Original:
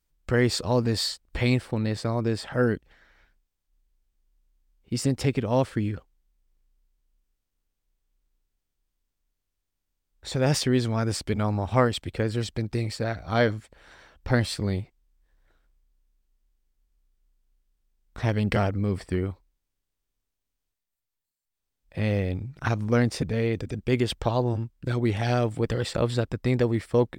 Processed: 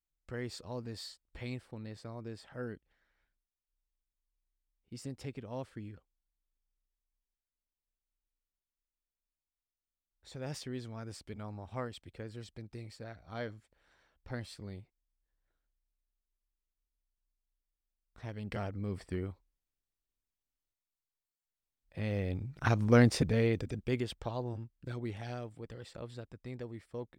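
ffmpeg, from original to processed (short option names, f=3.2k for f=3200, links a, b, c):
-af "volume=-0.5dB,afade=t=in:st=18.35:d=0.67:silence=0.398107,afade=t=in:st=22.1:d=0.96:silence=0.334965,afade=t=out:st=23.06:d=1.05:silence=0.237137,afade=t=out:st=24.86:d=0.69:silence=0.446684"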